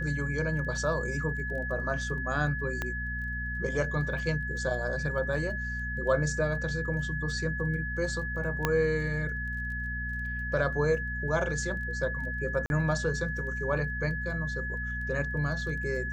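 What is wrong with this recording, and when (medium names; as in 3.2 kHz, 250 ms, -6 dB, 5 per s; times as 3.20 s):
crackle 16 per s -41 dBFS
hum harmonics 4 -36 dBFS
whine 1.7 kHz -34 dBFS
2.82 s: pop -17 dBFS
8.65 s: pop -11 dBFS
12.66–12.70 s: dropout 41 ms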